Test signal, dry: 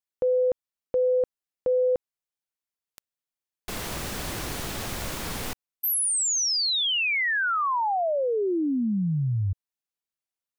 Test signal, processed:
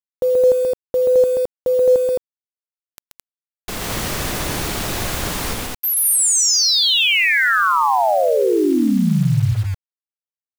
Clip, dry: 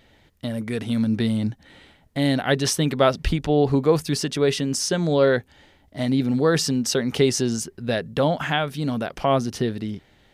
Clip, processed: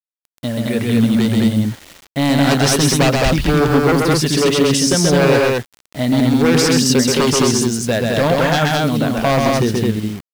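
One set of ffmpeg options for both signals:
ffmpeg -i in.wav -af "aeval=exprs='0.168*(abs(mod(val(0)/0.168+3,4)-2)-1)':channel_layout=same,aecho=1:1:131.2|215.7:0.708|0.794,acrusher=bits=6:mix=0:aa=0.000001,volume=6dB" out.wav

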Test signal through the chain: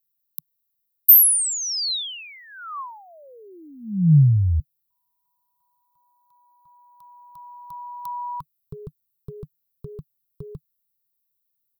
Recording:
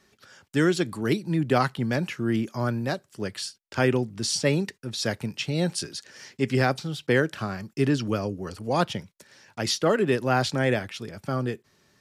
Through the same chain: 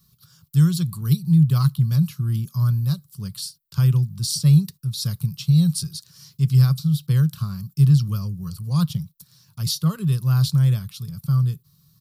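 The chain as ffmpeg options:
ffmpeg -i in.wav -af "firequalizer=gain_entry='entry(100,0);entry(150,9);entry(250,-24);entry(760,-29);entry(1100,-11);entry(1800,-28);entry(4000,-5);entry(6600,-9);entry(14000,13)':delay=0.05:min_phase=1,volume=7.5dB" out.wav

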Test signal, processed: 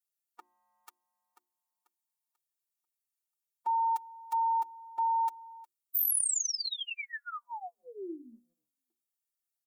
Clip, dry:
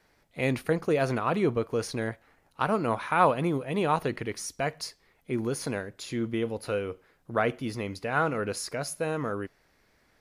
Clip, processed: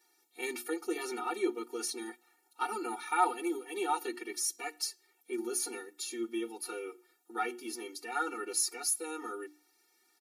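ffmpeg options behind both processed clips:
ffmpeg -i in.wav -filter_complex "[0:a]highshelf=frequency=2800:gain=9,bandreject=frequency=60:width_type=h:width=6,bandreject=frequency=120:width_type=h:width=6,bandreject=frequency=180:width_type=h:width=6,bandreject=frequency=240:width_type=h:width=6,bandreject=frequency=300:width_type=h:width=6,bandreject=frequency=360:width_type=h:width=6,aecho=1:1:5.6:0.94,acrossover=split=220|6400[link_01][link_02][link_03];[link_03]acontrast=89[link_04];[link_01][link_02][link_04]amix=inputs=3:normalize=0,afftfilt=real='re*eq(mod(floor(b*sr/1024/240),2),1)':imag='im*eq(mod(floor(b*sr/1024/240),2),1)':win_size=1024:overlap=0.75,volume=-8dB" out.wav

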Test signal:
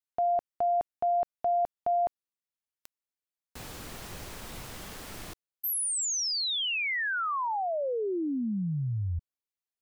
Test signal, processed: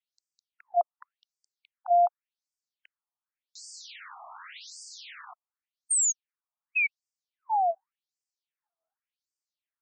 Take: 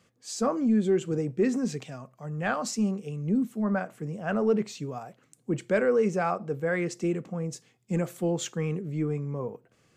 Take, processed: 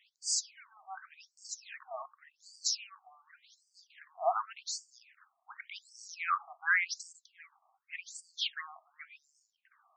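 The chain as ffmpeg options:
ffmpeg -i in.wav -af "afftfilt=real='re*between(b*sr/1024,890*pow(6500/890,0.5+0.5*sin(2*PI*0.88*pts/sr))/1.41,890*pow(6500/890,0.5+0.5*sin(2*PI*0.88*pts/sr))*1.41)':imag='im*between(b*sr/1024,890*pow(6500/890,0.5+0.5*sin(2*PI*0.88*pts/sr))/1.41,890*pow(6500/890,0.5+0.5*sin(2*PI*0.88*pts/sr))*1.41)':win_size=1024:overlap=0.75,volume=6.5dB" out.wav

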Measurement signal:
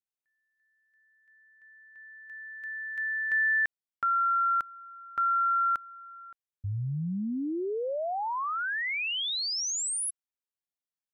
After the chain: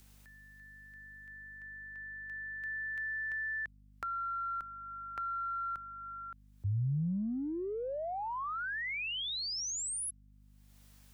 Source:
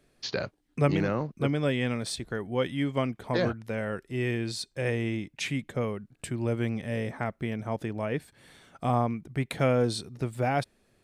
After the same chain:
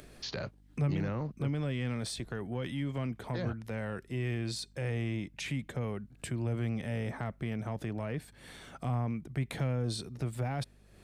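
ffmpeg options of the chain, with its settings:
ffmpeg -i in.wav -filter_complex "[0:a]acompressor=mode=upward:threshold=-40dB:ratio=2.5:attack=1.6:release=379:knee=2.83:detection=peak,aeval=exprs='val(0)+0.00112*(sin(2*PI*50*n/s)+sin(2*PI*2*50*n/s)/2+sin(2*PI*3*50*n/s)/3+sin(2*PI*4*50*n/s)/4+sin(2*PI*5*50*n/s)/5)':channel_layout=same,acrossover=split=160[link_01][link_02];[link_02]acompressor=threshold=-36dB:ratio=10:attack=2.3:release=27:knee=2.83:detection=peak[link_03];[link_01][link_03]amix=inputs=2:normalize=0" out.wav

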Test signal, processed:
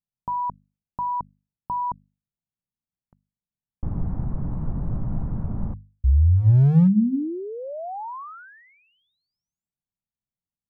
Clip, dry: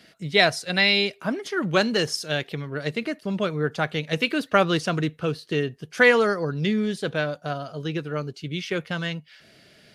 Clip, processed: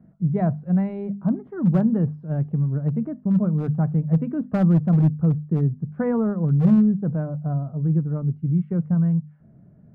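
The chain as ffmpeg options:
ffmpeg -i in.wav -af "lowpass=frequency=1000:width=0.5412,lowpass=frequency=1000:width=1.3066,lowshelf=frequency=270:width_type=q:width=1.5:gain=14,volume=7.5dB,asoftclip=hard,volume=-7.5dB,bandreject=frequency=50:width_type=h:width=6,bandreject=frequency=100:width_type=h:width=6,bandreject=frequency=150:width_type=h:width=6,bandreject=frequency=200:width_type=h:width=6,bandreject=frequency=250:width_type=h:width=6,volume=-4dB" out.wav

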